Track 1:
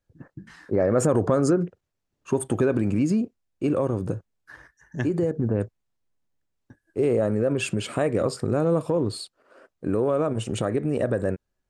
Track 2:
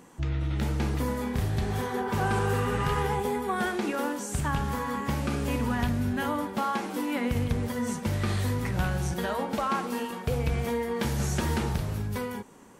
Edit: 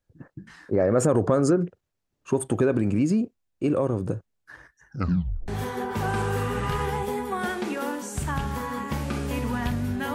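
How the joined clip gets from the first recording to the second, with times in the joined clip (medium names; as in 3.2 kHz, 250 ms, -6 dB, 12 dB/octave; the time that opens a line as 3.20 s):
track 1
4.88 s: tape stop 0.60 s
5.48 s: go over to track 2 from 1.65 s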